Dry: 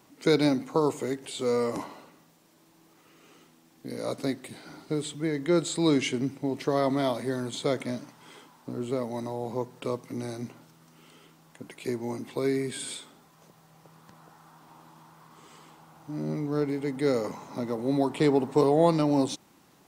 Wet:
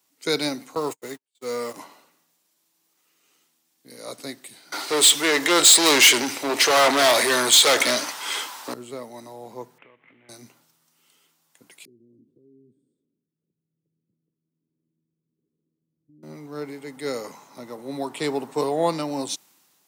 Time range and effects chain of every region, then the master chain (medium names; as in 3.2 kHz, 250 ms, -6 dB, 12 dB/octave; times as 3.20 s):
0.75–1.79 s: jump at every zero crossing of -39.5 dBFS + gate -31 dBFS, range -52 dB + band-stop 920 Hz, Q 26
4.72–8.74 s: overdrive pedal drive 29 dB, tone 4.7 kHz, clips at -11 dBFS + peaking EQ 180 Hz -9 dB 0.79 oct
9.78–10.29 s: CVSD coder 16 kbps + peaking EQ 2.1 kHz +10.5 dB 0.61 oct + compression, threshold -42 dBFS
11.85–16.23 s: compression 5:1, threshold -37 dBFS + inverse Chebyshev low-pass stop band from 750 Hz
whole clip: high-pass 86 Hz; tilt EQ +3 dB/octave; three bands expanded up and down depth 40%